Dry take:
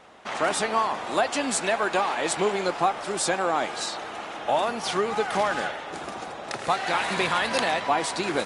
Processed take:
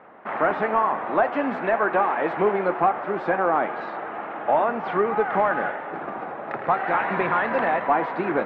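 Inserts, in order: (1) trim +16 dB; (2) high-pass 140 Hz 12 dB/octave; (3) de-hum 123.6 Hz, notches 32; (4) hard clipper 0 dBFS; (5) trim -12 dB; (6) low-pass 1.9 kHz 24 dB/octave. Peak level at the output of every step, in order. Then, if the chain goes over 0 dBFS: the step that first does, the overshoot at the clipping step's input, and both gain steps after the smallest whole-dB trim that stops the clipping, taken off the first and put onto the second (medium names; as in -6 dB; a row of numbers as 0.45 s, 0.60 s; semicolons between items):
+7.0 dBFS, +7.5 dBFS, +7.5 dBFS, 0.0 dBFS, -12.0 dBFS, -10.5 dBFS; step 1, 7.5 dB; step 1 +8 dB, step 5 -4 dB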